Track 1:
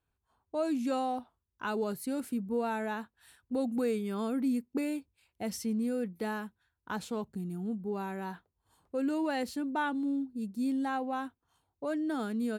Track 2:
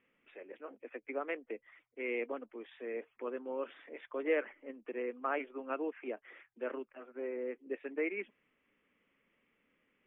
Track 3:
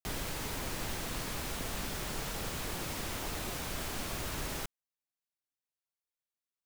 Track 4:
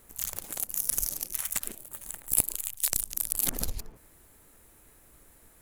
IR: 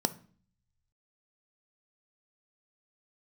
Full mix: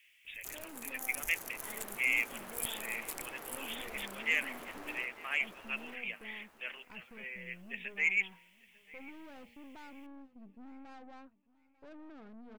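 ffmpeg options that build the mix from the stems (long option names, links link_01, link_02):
-filter_complex "[0:a]lowpass=1600,bandreject=frequency=118.4:width_type=h:width=4,bandreject=frequency=236.8:width_type=h:width=4,bandreject=frequency=355.2:width_type=h:width=4,bandreject=frequency=473.6:width_type=h:width=4,bandreject=frequency=592:width_type=h:width=4,bandreject=frequency=710.4:width_type=h:width=4,bandreject=frequency=828.8:width_type=h:width=4,bandreject=frequency=947.2:width_type=h:width=4,aeval=exprs='(tanh(89.1*val(0)+0.65)-tanh(0.65))/89.1':channel_layout=same,volume=-11dB,asplit=2[link_01][link_02];[link_02]volume=-21dB[link_03];[1:a]aexciter=amount=15.8:drive=3.8:freq=2000,highpass=980,volume=-5.5dB,asplit=2[link_04][link_05];[link_05]volume=-24dB[link_06];[2:a]asoftclip=type=tanh:threshold=-39.5dB,acrossover=split=260 2300:gain=0.0891 1 0.141[link_07][link_08][link_09];[link_07][link_08][link_09]amix=inputs=3:normalize=0,dynaudnorm=framelen=640:gausssize=3:maxgain=5.5dB,adelay=400,volume=-6.5dB,asplit=2[link_10][link_11];[link_11]volume=-5dB[link_12];[3:a]adelay=250,volume=-12.5dB,afade=type=out:start_time=2.93:duration=0.48:silence=0.281838,asplit=2[link_13][link_14];[link_14]volume=-8dB[link_15];[link_03][link_06][link_12][link_15]amix=inputs=4:normalize=0,aecho=0:1:895|1790|2685|3580|4475:1|0.32|0.102|0.0328|0.0105[link_16];[link_01][link_04][link_10][link_13][link_16]amix=inputs=5:normalize=0,asoftclip=type=tanh:threshold=-17.5dB"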